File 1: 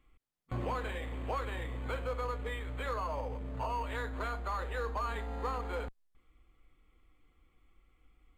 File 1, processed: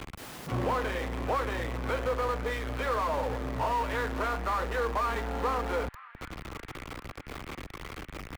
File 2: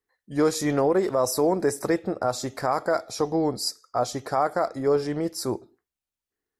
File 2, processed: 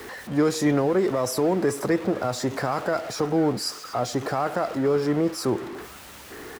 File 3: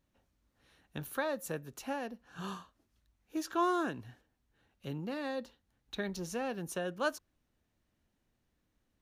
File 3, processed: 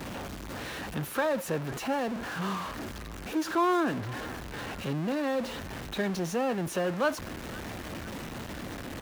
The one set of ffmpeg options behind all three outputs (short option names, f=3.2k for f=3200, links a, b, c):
-filter_complex "[0:a]aeval=exprs='val(0)+0.5*0.0211*sgn(val(0))':c=same,highpass=f=110:p=1,highshelf=f=3.5k:g=-10,acrossover=split=280|1600|2200[a][b][c][d];[b]alimiter=limit=-23dB:level=0:latency=1:release=99[e];[c]aecho=1:1:501|1002|1503|2004|2505|3006|3507|4008:0.501|0.291|0.169|0.0978|0.0567|0.0329|0.0191|0.0111[f];[a][e][f][d]amix=inputs=4:normalize=0,volume=4.5dB"